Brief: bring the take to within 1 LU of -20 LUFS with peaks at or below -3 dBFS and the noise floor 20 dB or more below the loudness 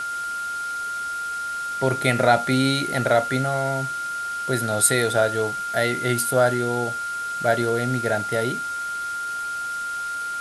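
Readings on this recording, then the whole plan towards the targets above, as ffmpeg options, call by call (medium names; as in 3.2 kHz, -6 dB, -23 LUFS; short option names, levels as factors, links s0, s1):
steady tone 1.4 kHz; tone level -26 dBFS; noise floor -29 dBFS; noise floor target -43 dBFS; loudness -23.0 LUFS; peak level -4.5 dBFS; loudness target -20.0 LUFS
-> -af "bandreject=f=1400:w=30"
-af "afftdn=nr=14:nf=-29"
-af "volume=1.41,alimiter=limit=0.708:level=0:latency=1"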